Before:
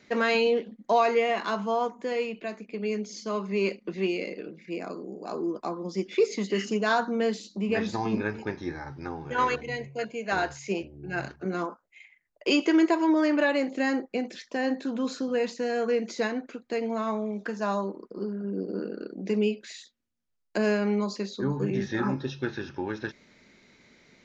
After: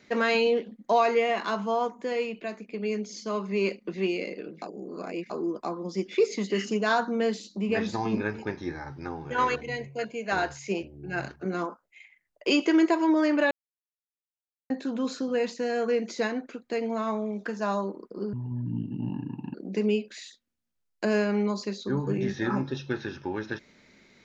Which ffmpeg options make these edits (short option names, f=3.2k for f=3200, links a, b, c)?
-filter_complex "[0:a]asplit=7[a][b][c][d][e][f][g];[a]atrim=end=4.622[h];[b]atrim=start=4.618:end=5.302,asetpts=PTS-STARTPTS,areverse[i];[c]atrim=start=5.298:end=13.51,asetpts=PTS-STARTPTS,afade=t=out:st=8.208:d=0.004:c=hsin[j];[d]atrim=start=13.51:end=14.7,asetpts=PTS-STARTPTS,volume=0[k];[e]atrim=start=14.7:end=18.334,asetpts=PTS-STARTPTS,afade=t=in:d=0.004:c=hsin[l];[f]atrim=start=18.33:end=19.07,asetpts=PTS-STARTPTS,asetrate=26901,aresample=44100,atrim=end_sample=53498,asetpts=PTS-STARTPTS[m];[g]atrim=start=19.066[n];[h][i]acrossfade=d=0.004:c1=hsin:c2=hsin[o];[j][k][l]concat=n=3:v=0:a=1[p];[o][p]acrossfade=d=0.004:c1=hsin:c2=hsin[q];[q][m]acrossfade=d=0.004:c1=hsin:c2=hsin[r];[r][n]acrossfade=d=0.004:c1=hsin:c2=hsin"